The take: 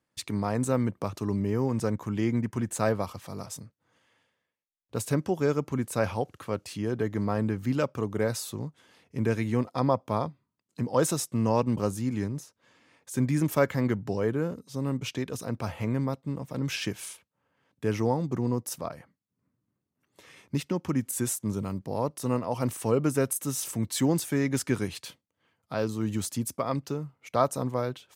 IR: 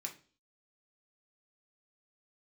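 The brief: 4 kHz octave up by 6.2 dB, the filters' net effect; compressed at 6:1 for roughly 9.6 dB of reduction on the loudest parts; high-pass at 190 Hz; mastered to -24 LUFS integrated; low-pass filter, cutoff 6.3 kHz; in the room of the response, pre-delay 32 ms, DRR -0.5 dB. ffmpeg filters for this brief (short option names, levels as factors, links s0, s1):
-filter_complex "[0:a]highpass=190,lowpass=6300,equalizer=f=4000:t=o:g=9,acompressor=threshold=0.0355:ratio=6,asplit=2[s0][s1];[1:a]atrim=start_sample=2205,adelay=32[s2];[s1][s2]afir=irnorm=-1:irlink=0,volume=1.26[s3];[s0][s3]amix=inputs=2:normalize=0,volume=2.66"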